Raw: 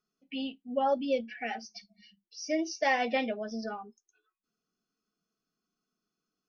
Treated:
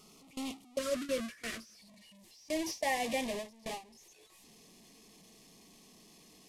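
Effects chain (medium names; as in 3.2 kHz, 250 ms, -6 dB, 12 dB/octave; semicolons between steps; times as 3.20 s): one-bit delta coder 64 kbps, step -26.5 dBFS; gate with hold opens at -24 dBFS; Butterworth band-stop 1.6 kHz, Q 2, from 0.77 s 820 Hz, from 1.77 s 1.4 kHz; trim -5 dB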